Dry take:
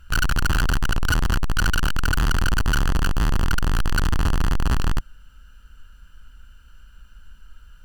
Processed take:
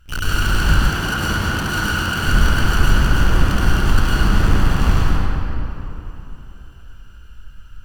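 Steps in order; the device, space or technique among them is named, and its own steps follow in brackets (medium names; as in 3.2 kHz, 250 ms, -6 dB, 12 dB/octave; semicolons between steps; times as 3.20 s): shimmer-style reverb (harmony voices +12 st -10 dB; reverberation RT60 3.3 s, pre-delay 97 ms, DRR -8.5 dB); 0.89–2.28 s: high-pass 140 Hz 6 dB/octave; trim -4 dB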